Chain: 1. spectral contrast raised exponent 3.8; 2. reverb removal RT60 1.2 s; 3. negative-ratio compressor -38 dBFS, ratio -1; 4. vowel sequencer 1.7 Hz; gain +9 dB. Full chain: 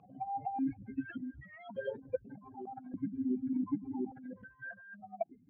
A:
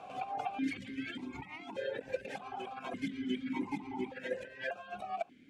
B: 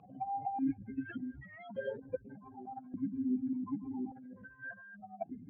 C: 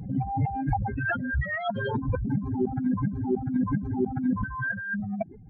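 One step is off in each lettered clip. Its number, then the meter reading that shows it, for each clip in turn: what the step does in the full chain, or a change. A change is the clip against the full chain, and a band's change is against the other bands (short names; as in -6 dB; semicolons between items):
1, 2 kHz band +6.0 dB; 2, 500 Hz band -2.0 dB; 4, 125 Hz band +15.0 dB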